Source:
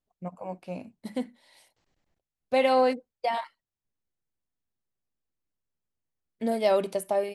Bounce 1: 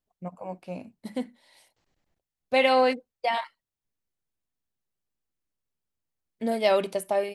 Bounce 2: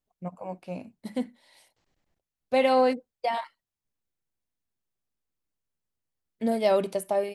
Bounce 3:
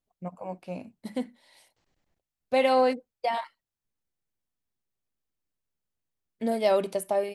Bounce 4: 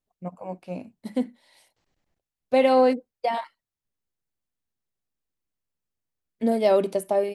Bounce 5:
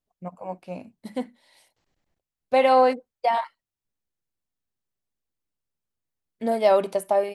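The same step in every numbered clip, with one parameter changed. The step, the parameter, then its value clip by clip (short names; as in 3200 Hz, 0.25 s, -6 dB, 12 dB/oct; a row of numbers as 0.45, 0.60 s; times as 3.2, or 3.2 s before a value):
dynamic EQ, frequency: 2600, 100, 9900, 300, 940 Hz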